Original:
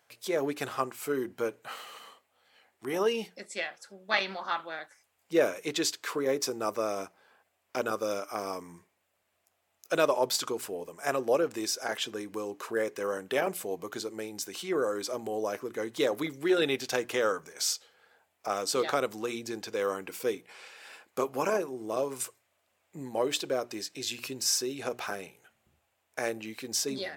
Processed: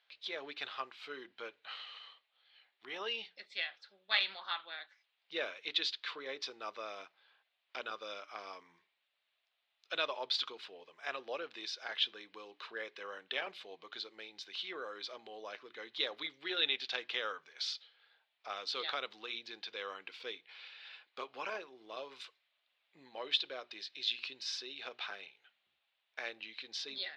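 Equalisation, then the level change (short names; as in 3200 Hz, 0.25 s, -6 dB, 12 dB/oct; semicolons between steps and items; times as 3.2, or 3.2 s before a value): band-pass 3800 Hz, Q 3.3; air absorption 330 m; +12.5 dB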